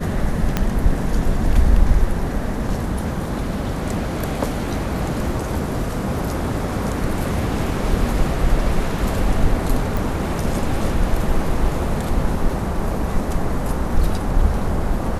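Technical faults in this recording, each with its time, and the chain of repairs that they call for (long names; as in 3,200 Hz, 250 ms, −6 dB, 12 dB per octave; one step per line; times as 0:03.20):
0:00.57: click −4 dBFS
0:09.97: click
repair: click removal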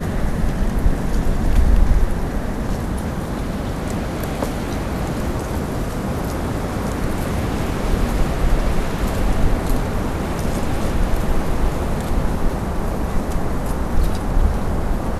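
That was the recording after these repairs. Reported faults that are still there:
0:00.57: click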